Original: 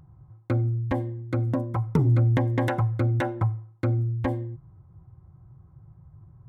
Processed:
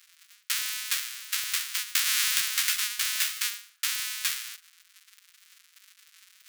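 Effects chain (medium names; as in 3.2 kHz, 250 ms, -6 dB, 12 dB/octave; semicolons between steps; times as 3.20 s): square wave that keeps the level; Bessel high-pass 2.5 kHz, order 8; tilt EQ +1.5 dB/octave; on a send: reverberation RT60 1.6 s, pre-delay 3 ms, DRR 24 dB; on the sum: trim +3 dB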